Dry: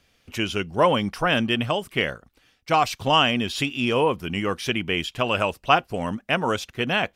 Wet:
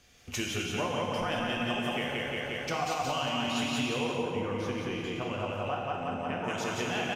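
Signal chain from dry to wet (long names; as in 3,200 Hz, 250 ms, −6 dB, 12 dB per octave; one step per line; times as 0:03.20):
parametric band 6,500 Hz +8.5 dB 0.32 octaves
repeating echo 177 ms, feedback 56%, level −3 dB
downward compressor 6 to 1, threshold −33 dBFS, peak gain reduction 19.5 dB
0:04.13–0:06.44: high-shelf EQ 2,300 Hz −12 dB
reverb whose tail is shaped and stops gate 500 ms falling, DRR −0.5 dB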